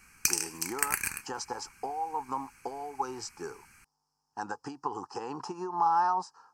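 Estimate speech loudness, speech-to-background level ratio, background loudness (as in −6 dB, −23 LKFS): −34.5 LKFS, −3.5 dB, −31.0 LKFS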